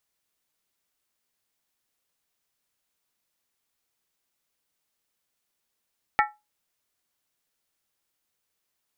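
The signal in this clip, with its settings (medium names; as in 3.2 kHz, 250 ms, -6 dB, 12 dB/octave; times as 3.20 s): skin hit, lowest mode 840 Hz, decay 0.23 s, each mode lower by 2 dB, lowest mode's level -16 dB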